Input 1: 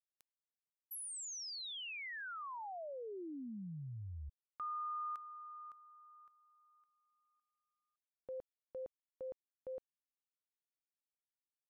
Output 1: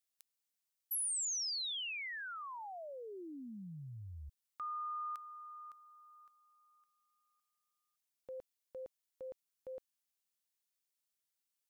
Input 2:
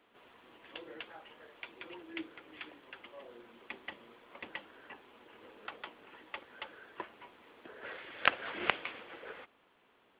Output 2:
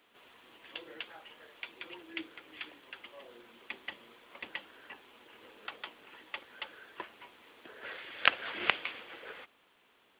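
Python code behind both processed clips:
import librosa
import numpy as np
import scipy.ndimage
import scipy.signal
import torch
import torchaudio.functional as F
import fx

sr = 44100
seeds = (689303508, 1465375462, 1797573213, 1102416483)

y = fx.high_shelf(x, sr, hz=2500.0, db=11.5)
y = F.gain(torch.from_numpy(y), -2.0).numpy()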